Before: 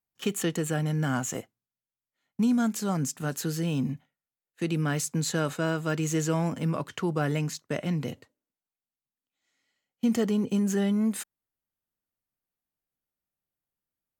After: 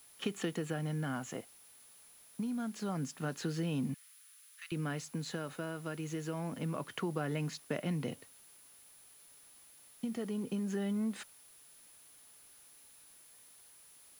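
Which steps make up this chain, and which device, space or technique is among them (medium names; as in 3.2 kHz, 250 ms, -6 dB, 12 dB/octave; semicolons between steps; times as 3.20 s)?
medium wave at night (band-pass 130–4400 Hz; compression, threshold -29 dBFS, peak gain reduction 8.5 dB; tremolo 0.26 Hz, depth 42%; whistle 10 kHz -57 dBFS; white noise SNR 23 dB); 3.94–4.72 s: steep high-pass 1.2 kHz 36 dB/octave; trim -2 dB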